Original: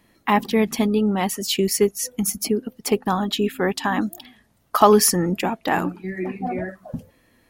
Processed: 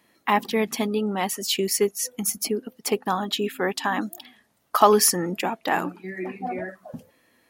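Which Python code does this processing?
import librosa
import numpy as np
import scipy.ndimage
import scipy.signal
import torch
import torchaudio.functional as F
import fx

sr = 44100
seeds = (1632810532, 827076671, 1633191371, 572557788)

y = fx.highpass(x, sr, hz=350.0, slope=6)
y = y * 10.0 ** (-1.0 / 20.0)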